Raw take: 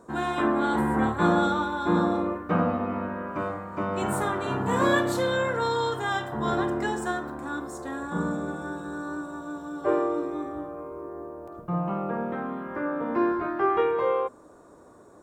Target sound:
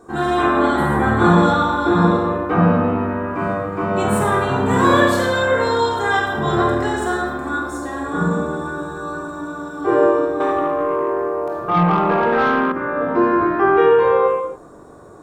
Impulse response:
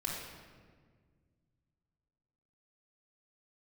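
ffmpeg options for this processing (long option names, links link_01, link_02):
-filter_complex "[1:a]atrim=start_sample=2205,afade=type=out:start_time=0.35:duration=0.01,atrim=end_sample=15876[link_01];[0:a][link_01]afir=irnorm=-1:irlink=0,asettb=1/sr,asplit=3[link_02][link_03][link_04];[link_02]atrim=end=10.404[link_05];[link_03]atrim=start=10.4:end=12.72,asetpts=PTS-STARTPTS,afade=type=in:duration=0.004:curve=qsin,afade=type=out:start_time=2.316:duration=0.004:curve=qsin,asplit=2[link_06][link_07];[link_07]highpass=frequency=720:poles=1,volume=17dB,asoftclip=type=tanh:threshold=-12.5dB[link_08];[link_06][link_08]amix=inputs=2:normalize=0,lowpass=frequency=5400:poles=1,volume=-6dB[link_09];[link_04]atrim=start=12.716[link_10];[link_05][link_09]acrossfade=duration=0.004:curve1=hsin:curve2=qsin[link_11];[link_11][link_10]acrossfade=duration=0.004:curve1=qsin:curve2=hsin,volume=6.5dB"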